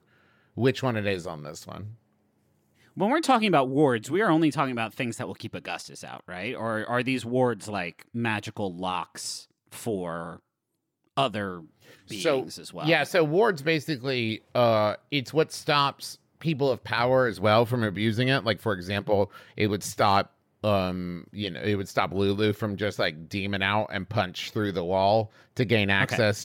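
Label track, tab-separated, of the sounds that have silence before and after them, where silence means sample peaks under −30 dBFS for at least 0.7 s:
2.970000	10.330000	sound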